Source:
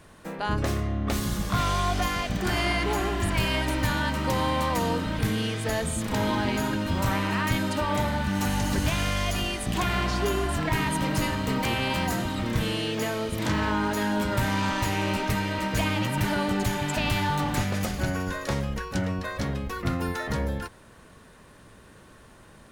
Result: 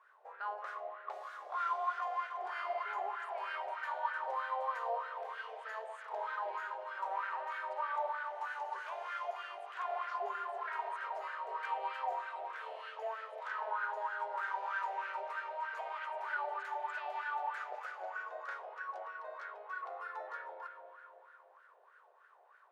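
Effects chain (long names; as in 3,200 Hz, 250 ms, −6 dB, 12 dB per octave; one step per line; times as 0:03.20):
linear-phase brick-wall high-pass 370 Hz
spring reverb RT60 3.3 s, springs 40/58 ms, chirp 55 ms, DRR 3.5 dB
LFO wah 3.2 Hz 700–1,500 Hz, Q 6.2
level −1.5 dB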